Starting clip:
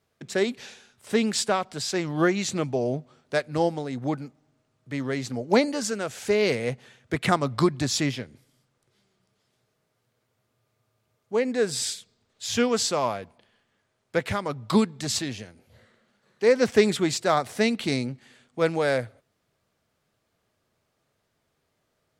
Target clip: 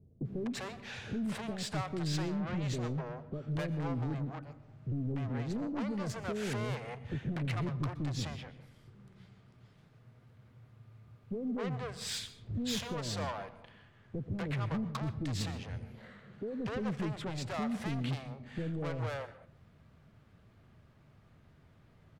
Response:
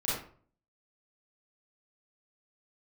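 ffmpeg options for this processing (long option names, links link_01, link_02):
-filter_complex "[0:a]bass=frequency=250:gain=12,treble=frequency=4000:gain=-14,acompressor=threshold=-34dB:ratio=5,asoftclip=type=tanh:threshold=-39dB,acrossover=split=490[link_01][link_02];[link_02]adelay=250[link_03];[link_01][link_03]amix=inputs=2:normalize=0,asplit=2[link_04][link_05];[1:a]atrim=start_sample=2205,adelay=85[link_06];[link_05][link_06]afir=irnorm=-1:irlink=0,volume=-22dB[link_07];[link_04][link_07]amix=inputs=2:normalize=0,volume=7.5dB"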